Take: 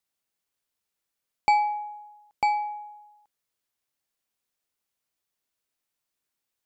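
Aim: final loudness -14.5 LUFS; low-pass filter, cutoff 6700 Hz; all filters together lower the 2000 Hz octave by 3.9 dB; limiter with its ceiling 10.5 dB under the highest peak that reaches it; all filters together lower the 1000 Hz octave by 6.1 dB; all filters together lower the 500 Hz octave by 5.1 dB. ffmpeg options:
-af "lowpass=6.7k,equalizer=f=500:t=o:g=-4.5,equalizer=f=1k:t=o:g=-5.5,equalizer=f=2k:t=o:g=-3.5,volume=23dB,alimiter=limit=-3dB:level=0:latency=1"

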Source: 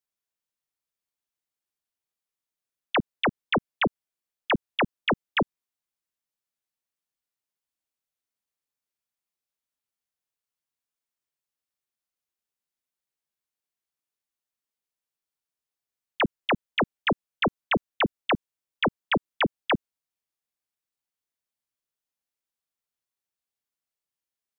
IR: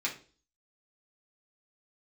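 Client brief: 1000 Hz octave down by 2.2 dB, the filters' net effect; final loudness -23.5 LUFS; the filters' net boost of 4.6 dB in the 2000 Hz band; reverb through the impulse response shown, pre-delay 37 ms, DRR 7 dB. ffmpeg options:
-filter_complex "[0:a]equalizer=f=1k:t=o:g=-5,equalizer=f=2k:t=o:g=7,asplit=2[a][b];[1:a]atrim=start_sample=2205,adelay=37[c];[b][c]afir=irnorm=-1:irlink=0,volume=-12.5dB[d];[a][d]amix=inputs=2:normalize=0,volume=1.5dB"

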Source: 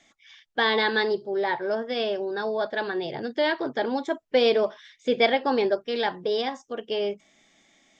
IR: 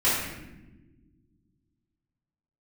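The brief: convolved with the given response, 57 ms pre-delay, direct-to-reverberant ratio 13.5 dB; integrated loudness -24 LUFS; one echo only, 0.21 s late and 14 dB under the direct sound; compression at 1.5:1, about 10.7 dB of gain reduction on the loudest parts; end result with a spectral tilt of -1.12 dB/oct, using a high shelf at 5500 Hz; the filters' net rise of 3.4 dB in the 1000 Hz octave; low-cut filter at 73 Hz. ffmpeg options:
-filter_complex "[0:a]highpass=73,equalizer=f=1k:t=o:g=4.5,highshelf=f=5.5k:g=-3,acompressor=threshold=-46dB:ratio=1.5,aecho=1:1:210:0.2,asplit=2[a][b];[1:a]atrim=start_sample=2205,adelay=57[c];[b][c]afir=irnorm=-1:irlink=0,volume=-28.5dB[d];[a][d]amix=inputs=2:normalize=0,volume=9.5dB"

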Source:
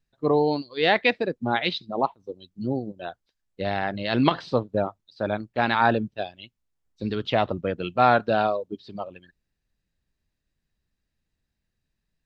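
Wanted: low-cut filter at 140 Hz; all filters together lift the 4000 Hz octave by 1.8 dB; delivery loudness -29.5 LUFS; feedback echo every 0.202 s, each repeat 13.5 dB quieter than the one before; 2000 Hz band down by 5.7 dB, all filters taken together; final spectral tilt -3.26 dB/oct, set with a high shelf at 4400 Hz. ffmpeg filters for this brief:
-af "highpass=140,equalizer=f=2k:t=o:g=-8.5,equalizer=f=4k:t=o:g=7.5,highshelf=f=4.4k:g=-6,aecho=1:1:202|404:0.211|0.0444,volume=-3.5dB"

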